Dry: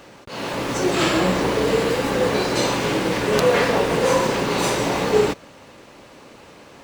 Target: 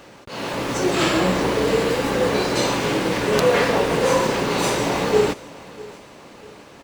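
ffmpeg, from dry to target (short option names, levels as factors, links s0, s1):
-af "aecho=1:1:647|1294|1941:0.0944|0.0387|0.0159"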